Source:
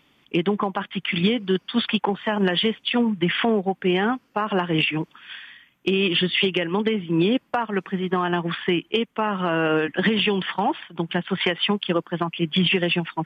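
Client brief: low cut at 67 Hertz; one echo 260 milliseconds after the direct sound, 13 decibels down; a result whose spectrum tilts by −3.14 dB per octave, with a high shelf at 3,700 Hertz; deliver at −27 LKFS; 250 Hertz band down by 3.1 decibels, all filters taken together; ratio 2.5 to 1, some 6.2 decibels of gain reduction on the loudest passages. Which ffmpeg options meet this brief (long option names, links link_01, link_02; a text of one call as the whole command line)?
ffmpeg -i in.wav -af "highpass=67,equalizer=frequency=250:width_type=o:gain=-4.5,highshelf=frequency=3700:gain=-6.5,acompressor=threshold=-28dB:ratio=2.5,aecho=1:1:260:0.224,volume=3dB" out.wav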